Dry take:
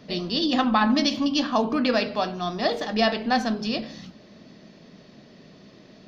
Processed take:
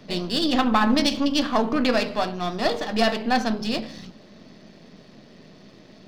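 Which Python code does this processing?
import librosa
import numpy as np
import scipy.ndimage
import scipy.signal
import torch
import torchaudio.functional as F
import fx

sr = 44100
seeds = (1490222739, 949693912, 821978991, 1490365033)

y = np.where(x < 0.0, 10.0 ** (-7.0 / 20.0) * x, x)
y = y * librosa.db_to_amplitude(3.5)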